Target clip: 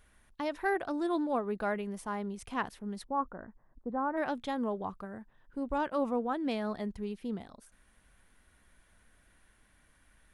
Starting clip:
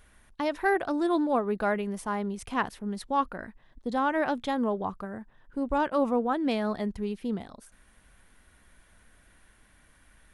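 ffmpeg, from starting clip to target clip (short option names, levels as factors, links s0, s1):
-filter_complex "[0:a]asplit=3[s0][s1][s2];[s0]afade=t=out:st=3.03:d=0.02[s3];[s1]lowpass=f=1400:w=0.5412,lowpass=f=1400:w=1.3066,afade=t=in:st=3.03:d=0.02,afade=t=out:st=4.16:d=0.02[s4];[s2]afade=t=in:st=4.16:d=0.02[s5];[s3][s4][s5]amix=inputs=3:normalize=0,volume=0.531"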